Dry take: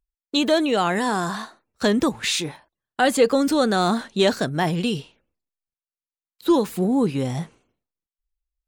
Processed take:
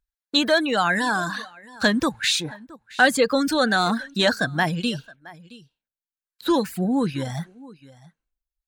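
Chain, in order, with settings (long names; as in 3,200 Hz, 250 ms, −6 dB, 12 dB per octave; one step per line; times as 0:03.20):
thirty-one-band graphic EQ 400 Hz −9 dB, 1,600 Hz +10 dB, 4,000 Hz +5 dB
single-tap delay 669 ms −20 dB
reverb reduction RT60 0.87 s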